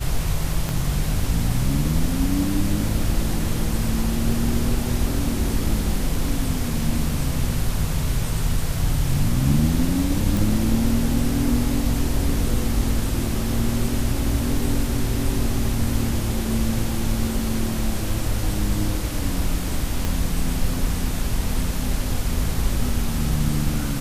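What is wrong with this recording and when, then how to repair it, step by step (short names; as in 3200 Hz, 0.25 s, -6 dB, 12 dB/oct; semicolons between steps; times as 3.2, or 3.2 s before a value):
0.69 pop
10.37 pop
20.05 pop -10 dBFS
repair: de-click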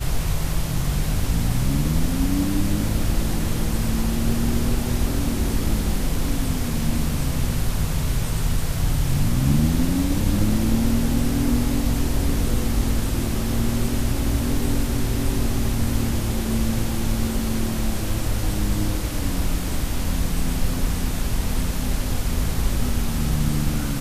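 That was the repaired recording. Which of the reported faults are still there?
0.69 pop
20.05 pop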